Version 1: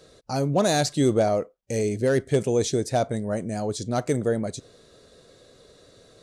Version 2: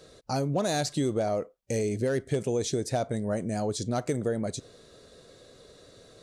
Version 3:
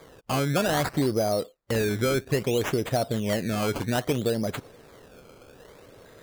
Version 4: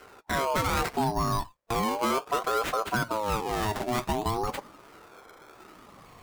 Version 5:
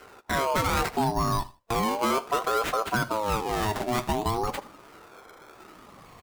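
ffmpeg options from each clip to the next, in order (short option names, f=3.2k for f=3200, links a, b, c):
-af "acompressor=threshold=-25dB:ratio=4"
-af "acrusher=samples=16:mix=1:aa=0.000001:lfo=1:lforange=16:lforate=0.61,volume=3dB"
-af "flanger=delay=6:depth=1.8:regen=-63:speed=0.33:shape=sinusoidal,asoftclip=type=tanh:threshold=-22.5dB,aeval=exprs='val(0)*sin(2*PI*700*n/s+700*0.3/0.38*sin(2*PI*0.38*n/s))':c=same,volume=6dB"
-af "aecho=1:1:78|156:0.1|0.025,volume=1.5dB"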